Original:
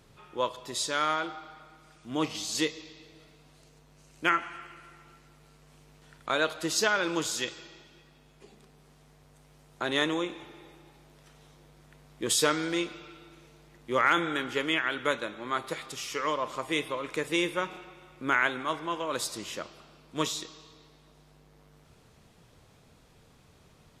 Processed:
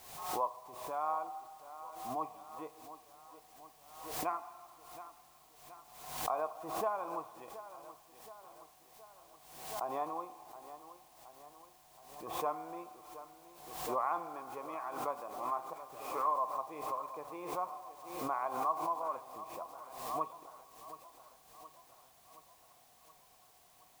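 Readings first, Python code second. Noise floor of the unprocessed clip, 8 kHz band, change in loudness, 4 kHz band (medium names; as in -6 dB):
-59 dBFS, -15.0 dB, -9.5 dB, -20.5 dB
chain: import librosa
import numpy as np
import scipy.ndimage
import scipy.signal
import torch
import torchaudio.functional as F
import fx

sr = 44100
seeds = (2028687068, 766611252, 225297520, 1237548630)

p1 = fx.formant_cascade(x, sr, vowel='a')
p2 = fx.wow_flutter(p1, sr, seeds[0], rate_hz=2.1, depth_cents=17.0)
p3 = fx.quant_dither(p2, sr, seeds[1], bits=12, dither='triangular')
p4 = p3 + fx.echo_feedback(p3, sr, ms=722, feedback_pct=58, wet_db=-14.0, dry=0)
p5 = fx.pre_swell(p4, sr, db_per_s=62.0)
y = F.gain(torch.from_numpy(p5), 6.0).numpy()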